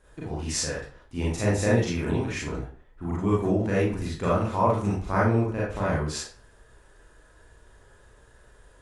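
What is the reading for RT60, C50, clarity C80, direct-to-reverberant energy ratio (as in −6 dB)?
0.40 s, 1.0 dB, 8.0 dB, −7.0 dB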